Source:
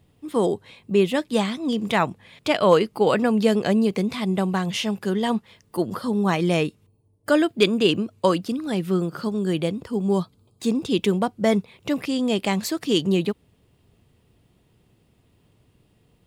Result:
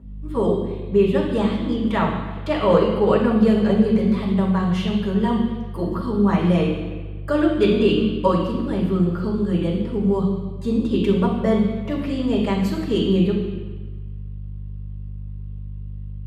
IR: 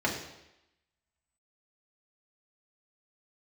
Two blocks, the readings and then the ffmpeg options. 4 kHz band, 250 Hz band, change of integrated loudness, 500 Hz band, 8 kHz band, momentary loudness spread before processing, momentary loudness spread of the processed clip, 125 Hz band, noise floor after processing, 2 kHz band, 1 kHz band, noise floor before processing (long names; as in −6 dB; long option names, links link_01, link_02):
−4.5 dB, +3.5 dB, +2.5 dB, +2.0 dB, below −10 dB, 9 LU, 17 LU, +6.0 dB, −32 dBFS, −3.0 dB, +0.5 dB, −63 dBFS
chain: -filter_complex "[0:a]aeval=exprs='val(0)+0.0178*(sin(2*PI*50*n/s)+sin(2*PI*2*50*n/s)/2+sin(2*PI*3*50*n/s)/3+sin(2*PI*4*50*n/s)/4+sin(2*PI*5*50*n/s)/5)':channel_layout=same[link_01];[1:a]atrim=start_sample=2205,asetrate=27783,aresample=44100[link_02];[link_01][link_02]afir=irnorm=-1:irlink=0,volume=-14dB"